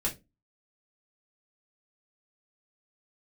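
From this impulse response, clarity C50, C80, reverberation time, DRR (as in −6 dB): 14.5 dB, 23.0 dB, 0.25 s, −4.0 dB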